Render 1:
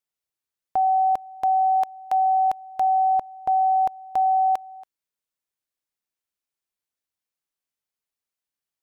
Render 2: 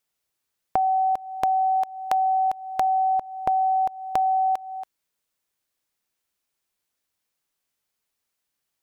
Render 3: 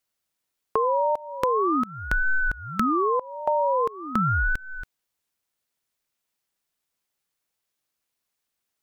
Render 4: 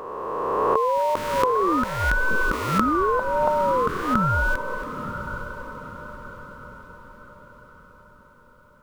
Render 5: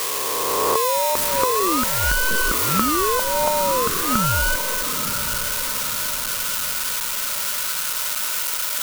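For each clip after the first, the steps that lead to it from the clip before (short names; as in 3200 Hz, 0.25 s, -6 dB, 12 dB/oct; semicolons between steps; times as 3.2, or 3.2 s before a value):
compressor 5:1, threshold -30 dBFS, peak gain reduction 10.5 dB; gain +8.5 dB
ring modulator with a swept carrier 460 Hz, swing 65%, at 0.43 Hz; gain +2 dB
spectral swells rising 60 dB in 2.56 s; diffused feedback echo 0.919 s, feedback 48%, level -10.5 dB
switching spikes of -11 dBFS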